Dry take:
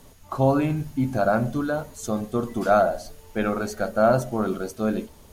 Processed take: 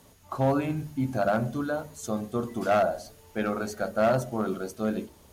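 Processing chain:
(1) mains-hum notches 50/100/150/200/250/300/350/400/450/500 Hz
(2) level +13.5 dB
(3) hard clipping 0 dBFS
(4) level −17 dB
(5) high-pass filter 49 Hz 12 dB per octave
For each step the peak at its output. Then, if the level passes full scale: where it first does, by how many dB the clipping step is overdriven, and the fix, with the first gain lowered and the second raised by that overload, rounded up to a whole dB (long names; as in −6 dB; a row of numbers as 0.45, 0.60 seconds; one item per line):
−7.0, +6.5, 0.0, −17.0, −15.0 dBFS
step 2, 6.5 dB
step 2 +6.5 dB, step 4 −10 dB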